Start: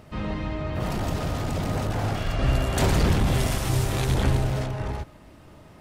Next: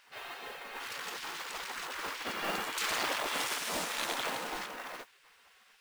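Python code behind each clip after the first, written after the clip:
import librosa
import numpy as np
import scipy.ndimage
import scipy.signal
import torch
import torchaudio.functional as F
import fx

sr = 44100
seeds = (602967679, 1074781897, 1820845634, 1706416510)

y = fx.spec_gate(x, sr, threshold_db=-20, keep='weak')
y = fx.high_shelf(y, sr, hz=7700.0, db=-7.5)
y = fx.mod_noise(y, sr, seeds[0], snr_db=14)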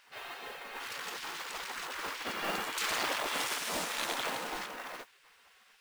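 y = x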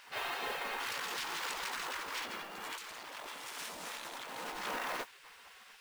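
y = fx.peak_eq(x, sr, hz=940.0, db=2.5, octaves=0.39)
y = fx.over_compress(y, sr, threshold_db=-43.0, ratio=-1.0)
y = y * librosa.db_to_amplitude(1.0)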